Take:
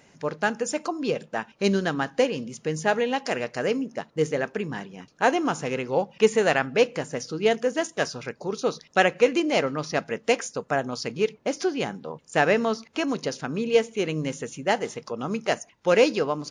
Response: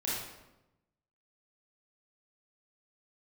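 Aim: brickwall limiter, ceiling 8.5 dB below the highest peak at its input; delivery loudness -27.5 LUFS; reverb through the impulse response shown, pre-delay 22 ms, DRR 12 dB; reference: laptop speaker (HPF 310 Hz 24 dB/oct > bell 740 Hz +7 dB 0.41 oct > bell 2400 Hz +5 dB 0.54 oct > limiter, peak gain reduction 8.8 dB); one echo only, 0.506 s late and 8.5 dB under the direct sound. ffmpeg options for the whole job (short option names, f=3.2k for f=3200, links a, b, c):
-filter_complex "[0:a]alimiter=limit=-12.5dB:level=0:latency=1,aecho=1:1:506:0.376,asplit=2[a][b];[1:a]atrim=start_sample=2205,adelay=22[c];[b][c]afir=irnorm=-1:irlink=0,volume=-17.5dB[d];[a][d]amix=inputs=2:normalize=0,highpass=f=310:w=0.5412,highpass=f=310:w=1.3066,equalizer=f=740:t=o:w=0.41:g=7,equalizer=f=2.4k:t=o:w=0.54:g=5,volume=1dB,alimiter=limit=-16dB:level=0:latency=1"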